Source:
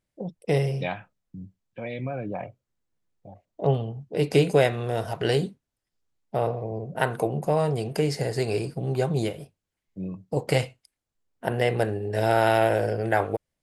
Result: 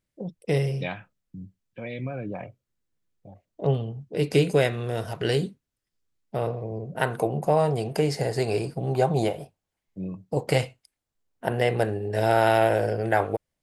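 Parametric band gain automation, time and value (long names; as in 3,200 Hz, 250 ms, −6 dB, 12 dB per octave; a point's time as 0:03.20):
parametric band 770 Hz 0.92 octaves
0:06.76 −5 dB
0:07.46 +4 dB
0:08.79 +4 dB
0:09.28 +13 dB
0:10.01 +1 dB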